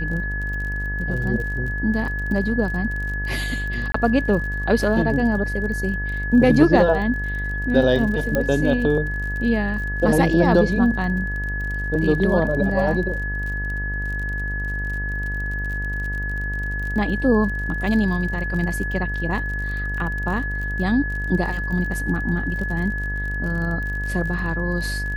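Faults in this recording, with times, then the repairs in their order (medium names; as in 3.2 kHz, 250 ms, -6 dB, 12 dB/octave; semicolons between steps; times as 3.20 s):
buzz 50 Hz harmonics 25 -27 dBFS
crackle 38 per s -30 dBFS
whine 1.7 kHz -27 dBFS
3.92–3.94 s: dropout 24 ms
8.35 s: pop -9 dBFS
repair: de-click; de-hum 50 Hz, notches 25; band-stop 1.7 kHz, Q 30; interpolate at 3.92 s, 24 ms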